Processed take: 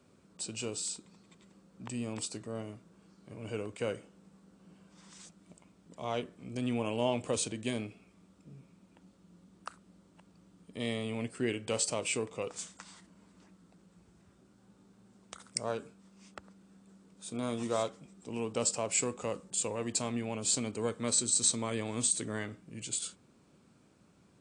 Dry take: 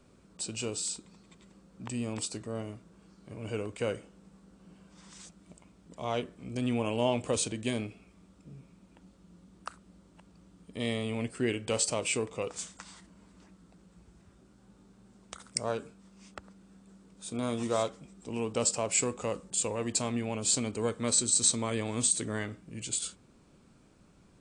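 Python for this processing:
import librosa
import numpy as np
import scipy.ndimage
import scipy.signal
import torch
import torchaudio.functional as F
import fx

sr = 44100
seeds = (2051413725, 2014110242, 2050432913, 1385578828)

y = scipy.signal.sosfilt(scipy.signal.butter(2, 88.0, 'highpass', fs=sr, output='sos'), x)
y = F.gain(torch.from_numpy(y), -2.5).numpy()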